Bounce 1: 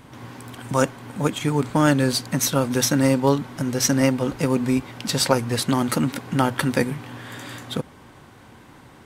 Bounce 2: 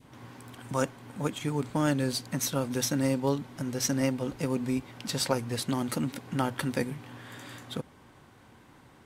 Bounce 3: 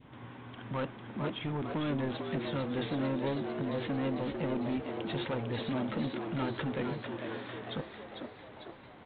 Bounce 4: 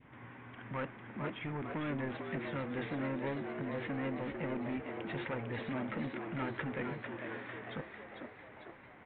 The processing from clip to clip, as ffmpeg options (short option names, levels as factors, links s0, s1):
-af "adynamicequalizer=threshold=0.0126:dfrequency=1300:dqfactor=1.2:tfrequency=1300:tqfactor=1.2:attack=5:release=100:ratio=0.375:range=2:mode=cutabove:tftype=bell,volume=0.376"
-filter_complex "[0:a]aresample=8000,asoftclip=type=tanh:threshold=0.0335,aresample=44100,asplit=8[s0][s1][s2][s3][s4][s5][s6][s7];[s1]adelay=449,afreqshift=94,volume=0.501[s8];[s2]adelay=898,afreqshift=188,volume=0.282[s9];[s3]adelay=1347,afreqshift=282,volume=0.157[s10];[s4]adelay=1796,afreqshift=376,volume=0.0881[s11];[s5]adelay=2245,afreqshift=470,volume=0.0495[s12];[s6]adelay=2694,afreqshift=564,volume=0.0275[s13];[s7]adelay=3143,afreqshift=658,volume=0.0155[s14];[s0][s8][s9][s10][s11][s12][s13][s14]amix=inputs=8:normalize=0"
-af "lowpass=f=2100:t=q:w=2.3,volume=0.562"